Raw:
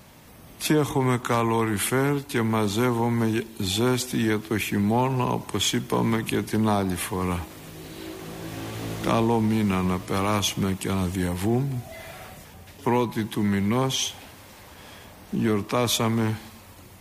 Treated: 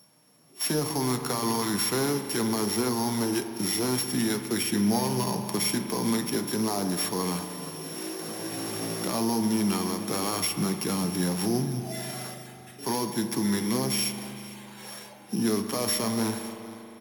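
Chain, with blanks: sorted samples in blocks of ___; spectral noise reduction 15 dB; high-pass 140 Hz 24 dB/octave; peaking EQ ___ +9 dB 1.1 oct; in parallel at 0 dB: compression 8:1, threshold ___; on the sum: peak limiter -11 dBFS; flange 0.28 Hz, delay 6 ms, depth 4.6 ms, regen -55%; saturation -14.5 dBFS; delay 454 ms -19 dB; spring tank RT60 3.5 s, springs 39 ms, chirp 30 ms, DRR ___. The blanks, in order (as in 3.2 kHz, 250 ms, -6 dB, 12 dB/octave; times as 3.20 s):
8 samples, 11 kHz, -32 dBFS, 8 dB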